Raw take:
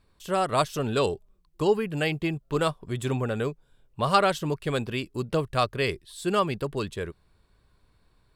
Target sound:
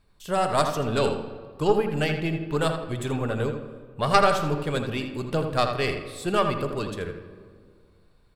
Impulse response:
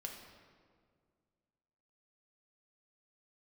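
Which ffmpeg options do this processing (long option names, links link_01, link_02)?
-filter_complex "[0:a]aeval=exprs='0.501*(cos(1*acos(clip(val(0)/0.501,-1,1)))-cos(1*PI/2))+0.2*(cos(2*acos(clip(val(0)/0.501,-1,1)))-cos(2*PI/2))':channel_layout=same,asplit=2[link_01][link_02];[link_02]adelay=81,lowpass=frequency=2800:poles=1,volume=-6dB,asplit=2[link_03][link_04];[link_04]adelay=81,lowpass=frequency=2800:poles=1,volume=0.39,asplit=2[link_05][link_06];[link_06]adelay=81,lowpass=frequency=2800:poles=1,volume=0.39,asplit=2[link_07][link_08];[link_08]adelay=81,lowpass=frequency=2800:poles=1,volume=0.39,asplit=2[link_09][link_10];[link_10]adelay=81,lowpass=frequency=2800:poles=1,volume=0.39[link_11];[link_01][link_03][link_05][link_07][link_09][link_11]amix=inputs=6:normalize=0,asplit=2[link_12][link_13];[1:a]atrim=start_sample=2205[link_14];[link_13][link_14]afir=irnorm=-1:irlink=0,volume=-0.5dB[link_15];[link_12][link_15]amix=inputs=2:normalize=0,volume=-3.5dB"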